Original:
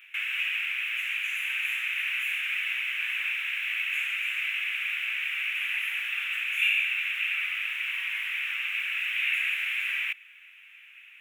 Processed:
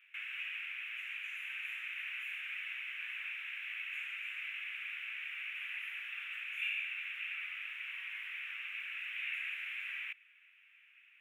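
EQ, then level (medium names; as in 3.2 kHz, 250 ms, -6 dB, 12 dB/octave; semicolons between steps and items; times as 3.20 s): high-pass 1.3 kHz 12 dB/octave; treble shelf 2 kHz -12 dB; treble shelf 5 kHz -4.5 dB; -4.0 dB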